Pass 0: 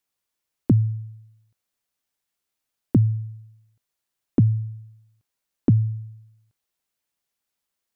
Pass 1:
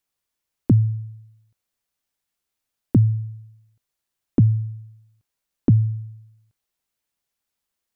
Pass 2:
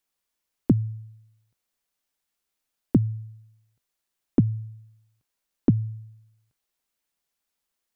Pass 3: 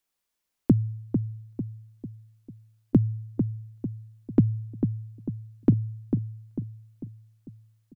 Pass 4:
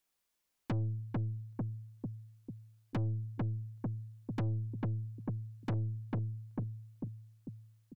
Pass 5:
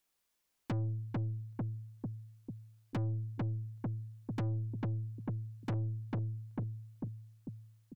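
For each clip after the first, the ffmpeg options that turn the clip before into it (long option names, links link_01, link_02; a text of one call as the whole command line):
ffmpeg -i in.wav -af "lowshelf=frequency=92:gain=5.5" out.wav
ffmpeg -i in.wav -af "equalizer=frequency=100:width_type=o:width=0.7:gain=-10.5" out.wav
ffmpeg -i in.wav -filter_complex "[0:a]asplit=2[link_01][link_02];[link_02]adelay=447,lowpass=frequency=920:poles=1,volume=-6dB,asplit=2[link_03][link_04];[link_04]adelay=447,lowpass=frequency=920:poles=1,volume=0.48,asplit=2[link_05][link_06];[link_06]adelay=447,lowpass=frequency=920:poles=1,volume=0.48,asplit=2[link_07][link_08];[link_08]adelay=447,lowpass=frequency=920:poles=1,volume=0.48,asplit=2[link_09][link_10];[link_10]adelay=447,lowpass=frequency=920:poles=1,volume=0.48,asplit=2[link_11][link_12];[link_12]adelay=447,lowpass=frequency=920:poles=1,volume=0.48[link_13];[link_01][link_03][link_05][link_07][link_09][link_11][link_13]amix=inputs=7:normalize=0" out.wav
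ffmpeg -i in.wav -af "aeval=exprs='(tanh(35.5*val(0)+0.25)-tanh(0.25))/35.5':channel_layout=same" out.wav
ffmpeg -i in.wav -af "asoftclip=type=tanh:threshold=-31dB,volume=1.5dB" out.wav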